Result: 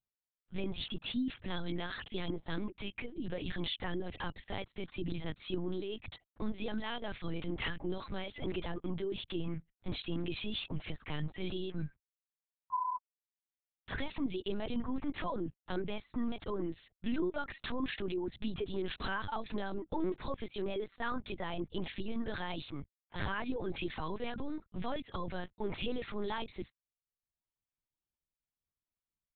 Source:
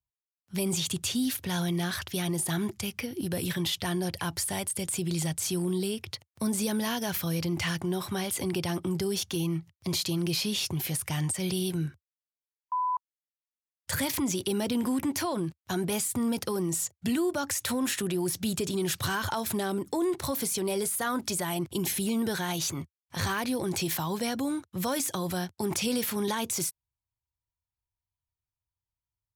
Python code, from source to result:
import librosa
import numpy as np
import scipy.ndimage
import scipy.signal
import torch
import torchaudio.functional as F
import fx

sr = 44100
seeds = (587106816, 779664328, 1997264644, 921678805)

y = fx.dereverb_blind(x, sr, rt60_s=0.76)
y = fx.lpc_vocoder(y, sr, seeds[0], excitation='pitch_kept', order=8)
y = F.gain(torch.from_numpy(y), -5.0).numpy()